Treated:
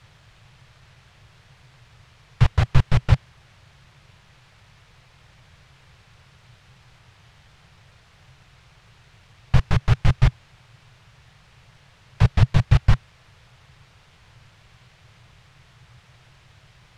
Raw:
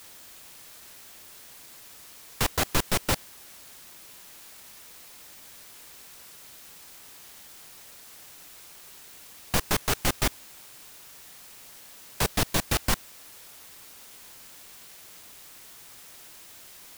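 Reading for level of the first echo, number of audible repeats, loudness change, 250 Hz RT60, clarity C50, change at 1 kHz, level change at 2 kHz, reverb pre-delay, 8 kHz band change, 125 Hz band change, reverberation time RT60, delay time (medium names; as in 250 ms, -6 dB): no echo, no echo, +6.5 dB, no reverb, no reverb, -0.5 dB, -1.0 dB, no reverb, under -15 dB, +17.0 dB, no reverb, no echo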